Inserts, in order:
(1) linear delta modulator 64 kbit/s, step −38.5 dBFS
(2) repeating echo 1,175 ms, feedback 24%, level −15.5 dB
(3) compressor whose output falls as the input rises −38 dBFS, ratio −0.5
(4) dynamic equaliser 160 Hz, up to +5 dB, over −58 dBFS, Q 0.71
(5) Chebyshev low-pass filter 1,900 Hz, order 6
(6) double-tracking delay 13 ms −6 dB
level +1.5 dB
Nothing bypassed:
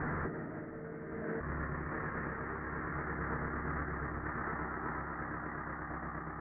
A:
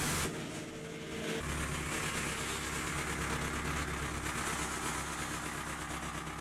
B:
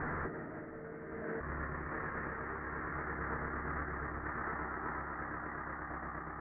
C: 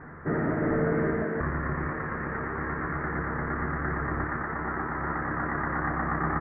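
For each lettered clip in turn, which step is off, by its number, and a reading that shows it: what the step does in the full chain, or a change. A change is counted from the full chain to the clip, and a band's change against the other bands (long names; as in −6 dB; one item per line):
5, 2 kHz band +2.5 dB
4, 125 Hz band −3.0 dB
3, 500 Hz band +1.5 dB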